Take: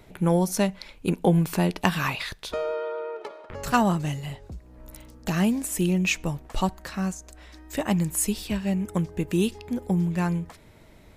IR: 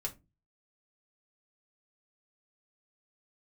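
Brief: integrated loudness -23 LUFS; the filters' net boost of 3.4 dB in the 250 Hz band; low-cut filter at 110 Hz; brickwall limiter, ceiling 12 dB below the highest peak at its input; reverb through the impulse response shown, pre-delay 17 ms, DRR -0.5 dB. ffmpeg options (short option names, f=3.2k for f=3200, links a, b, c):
-filter_complex "[0:a]highpass=110,equalizer=f=250:t=o:g=6,alimiter=limit=-15.5dB:level=0:latency=1,asplit=2[a][b];[1:a]atrim=start_sample=2205,adelay=17[c];[b][c]afir=irnorm=-1:irlink=0,volume=0dB[d];[a][d]amix=inputs=2:normalize=0,volume=-0.5dB"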